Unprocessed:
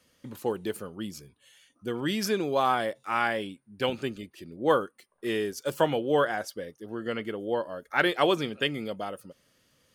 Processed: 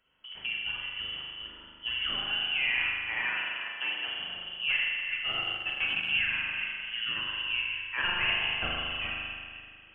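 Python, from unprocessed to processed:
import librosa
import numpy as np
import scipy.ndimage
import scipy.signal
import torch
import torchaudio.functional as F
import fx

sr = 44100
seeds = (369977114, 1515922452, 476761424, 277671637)

y = fx.reverse_delay(x, sr, ms=246, wet_db=-11.0)
y = fx.recorder_agc(y, sr, target_db=-17.0, rise_db_per_s=10.0, max_gain_db=30)
y = (np.kron(y[::4], np.eye(4)[0]) * 4)[:len(y)]
y = np.clip(y, -10.0 ** (-3.5 / 20.0), 10.0 ** (-3.5 / 20.0))
y = fx.freq_invert(y, sr, carrier_hz=3200)
y = fx.highpass(y, sr, hz=580.0, slope=12, at=(3.25, 4.08))
y = fx.rev_spring(y, sr, rt60_s=2.0, pass_ms=(39,), chirp_ms=30, drr_db=-3.0)
y = fx.transient(y, sr, attack_db=0, sustain_db=-12, at=(5.32, 6.16))
y = y * librosa.db_to_amplitude(-8.0)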